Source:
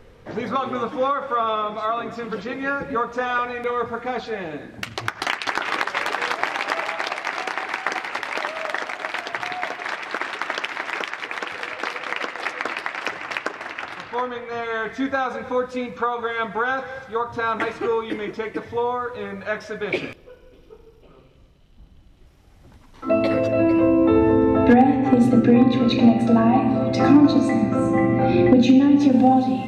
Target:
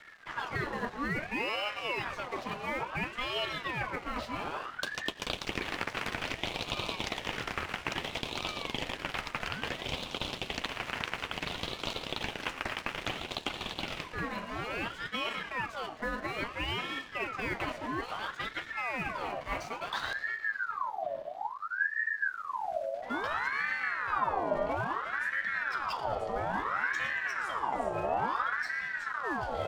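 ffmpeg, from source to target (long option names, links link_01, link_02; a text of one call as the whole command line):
ffmpeg -i in.wav -filter_complex "[0:a]areverse,acompressor=threshold=-31dB:ratio=4,areverse,asubboost=boost=11.5:cutoff=75,asplit=6[link_01][link_02][link_03][link_04][link_05][link_06];[link_02]adelay=114,afreqshift=56,volume=-16dB[link_07];[link_03]adelay=228,afreqshift=112,volume=-20.9dB[link_08];[link_04]adelay=342,afreqshift=168,volume=-25.8dB[link_09];[link_05]adelay=456,afreqshift=224,volume=-30.6dB[link_10];[link_06]adelay=570,afreqshift=280,volume=-35.5dB[link_11];[link_01][link_07][link_08][link_09][link_10][link_11]amix=inputs=6:normalize=0,aeval=exprs='sgn(val(0))*max(abs(val(0))-0.00376,0)':channel_layout=same,afreqshift=-80,aeval=exprs='val(0)*sin(2*PI*1200*n/s+1200*0.5/0.59*sin(2*PI*0.59*n/s))':channel_layout=same,volume=2.5dB" out.wav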